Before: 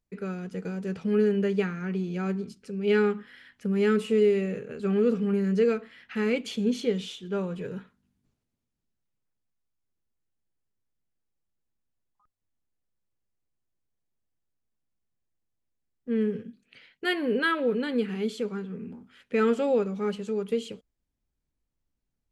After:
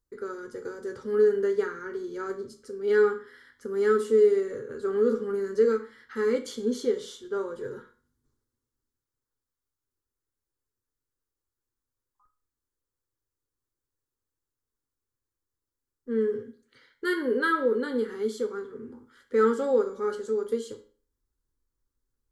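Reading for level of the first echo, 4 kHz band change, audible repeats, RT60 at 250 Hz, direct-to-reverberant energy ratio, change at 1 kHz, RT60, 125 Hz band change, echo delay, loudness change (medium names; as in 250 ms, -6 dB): no echo, -6.0 dB, no echo, 0.45 s, 4.5 dB, +2.5 dB, 0.40 s, under -10 dB, no echo, +0.5 dB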